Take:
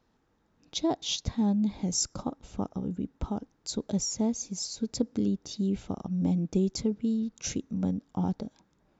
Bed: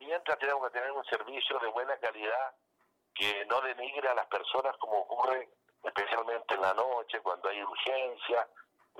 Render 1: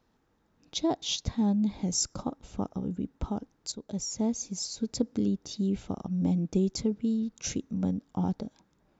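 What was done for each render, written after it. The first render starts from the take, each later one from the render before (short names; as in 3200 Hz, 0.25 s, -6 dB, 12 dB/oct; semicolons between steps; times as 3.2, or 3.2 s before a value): 3.72–4.31 fade in, from -12.5 dB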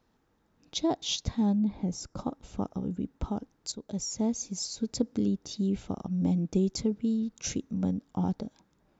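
1.59–2.17 LPF 1400 Hz 6 dB/oct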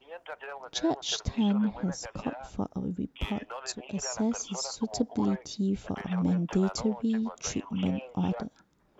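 add bed -10 dB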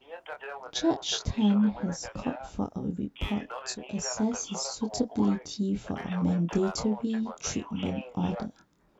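doubler 24 ms -5 dB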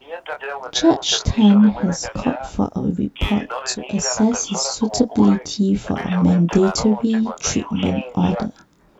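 gain +11.5 dB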